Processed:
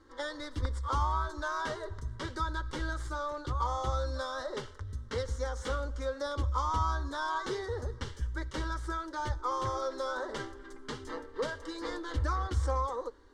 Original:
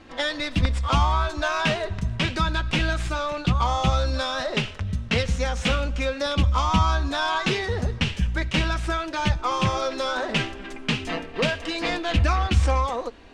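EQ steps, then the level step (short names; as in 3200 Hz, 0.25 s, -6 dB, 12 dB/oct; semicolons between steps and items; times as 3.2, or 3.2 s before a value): dynamic EQ 670 Hz, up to +8 dB, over -41 dBFS, Q 1.6; fixed phaser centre 690 Hz, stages 6; -9.0 dB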